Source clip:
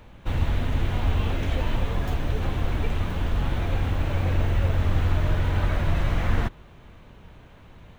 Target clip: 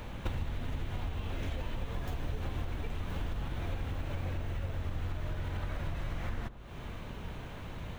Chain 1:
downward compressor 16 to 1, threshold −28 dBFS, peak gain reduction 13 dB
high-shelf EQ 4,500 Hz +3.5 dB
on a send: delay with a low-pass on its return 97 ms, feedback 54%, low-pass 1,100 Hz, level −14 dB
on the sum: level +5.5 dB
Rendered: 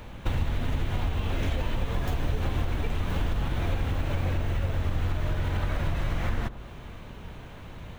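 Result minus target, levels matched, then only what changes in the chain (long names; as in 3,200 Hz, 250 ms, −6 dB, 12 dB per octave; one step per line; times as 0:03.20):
downward compressor: peak gain reduction −8.5 dB
change: downward compressor 16 to 1, threshold −37 dBFS, peak gain reduction 21.5 dB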